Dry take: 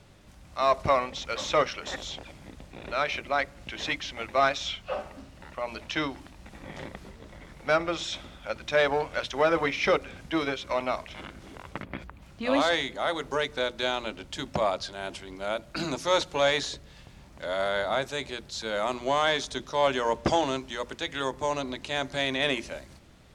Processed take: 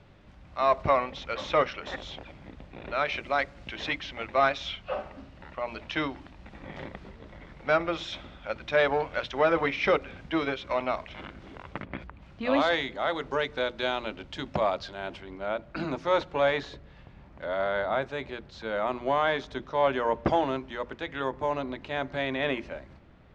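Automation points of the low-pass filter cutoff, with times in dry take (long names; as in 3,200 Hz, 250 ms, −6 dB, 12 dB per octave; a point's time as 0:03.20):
0:02.98 3,100 Hz
0:03.26 5,600 Hz
0:04.02 3,500 Hz
0:14.88 3,500 Hz
0:15.41 2,200 Hz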